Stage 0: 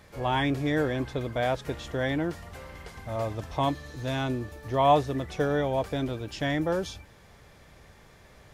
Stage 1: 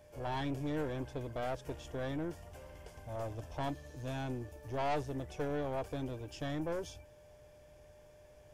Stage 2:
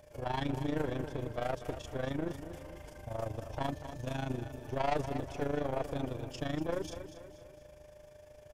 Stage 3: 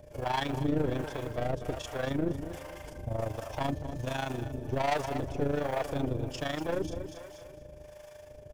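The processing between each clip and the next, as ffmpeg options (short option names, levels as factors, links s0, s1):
-af "equalizer=f=200:t=o:w=0.33:g=-10,equalizer=f=1250:t=o:w=0.33:g=-11,equalizer=f=2000:t=o:w=0.33:g=-9,equalizer=f=4000:t=o:w=0.33:g=-11,aeval=exprs='val(0)+0.00282*sin(2*PI*600*n/s)':c=same,aeval=exprs='(tanh(17.8*val(0)+0.45)-tanh(0.45))/17.8':c=same,volume=0.531"
-af "tremolo=f=26:d=0.788,aecho=1:1:240|480|720|960|1200:0.282|0.127|0.0571|0.0257|0.0116,volume=1.88"
-filter_complex "[0:a]acrusher=bits=8:mode=log:mix=0:aa=0.000001,asoftclip=type=tanh:threshold=0.0376,acrossover=split=560[s0][s1];[s0]aeval=exprs='val(0)*(1-0.7/2+0.7/2*cos(2*PI*1.3*n/s))':c=same[s2];[s1]aeval=exprs='val(0)*(1-0.7/2-0.7/2*cos(2*PI*1.3*n/s))':c=same[s3];[s2][s3]amix=inputs=2:normalize=0,volume=2.82"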